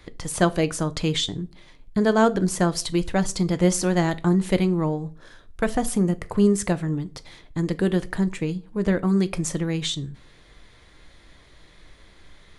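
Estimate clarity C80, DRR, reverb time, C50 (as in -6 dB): 27.0 dB, 11.5 dB, not exponential, 21.5 dB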